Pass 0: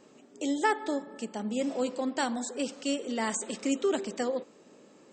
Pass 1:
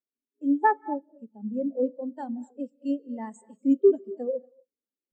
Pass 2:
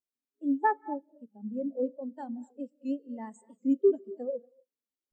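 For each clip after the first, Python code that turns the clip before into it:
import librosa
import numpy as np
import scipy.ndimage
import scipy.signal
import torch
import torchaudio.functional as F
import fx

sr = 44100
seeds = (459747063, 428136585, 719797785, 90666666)

y1 = fx.rev_gated(x, sr, seeds[0], gate_ms=280, shape='rising', drr_db=9.0)
y1 = fx.spectral_expand(y1, sr, expansion=2.5)
y1 = F.gain(torch.from_numpy(y1), 3.5).numpy()
y2 = fx.record_warp(y1, sr, rpm=78.0, depth_cents=100.0)
y2 = F.gain(torch.from_numpy(y2), -4.5).numpy()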